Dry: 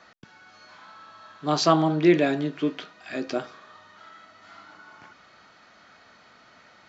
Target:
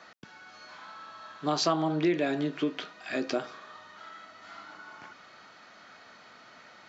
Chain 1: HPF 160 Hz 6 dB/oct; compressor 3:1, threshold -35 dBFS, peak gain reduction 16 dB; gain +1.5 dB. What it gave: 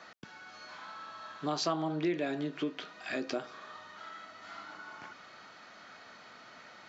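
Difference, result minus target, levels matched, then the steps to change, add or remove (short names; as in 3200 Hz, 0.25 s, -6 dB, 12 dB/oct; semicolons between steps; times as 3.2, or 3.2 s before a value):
compressor: peak gain reduction +5.5 dB
change: compressor 3:1, threshold -27 dBFS, peak gain reduction 10.5 dB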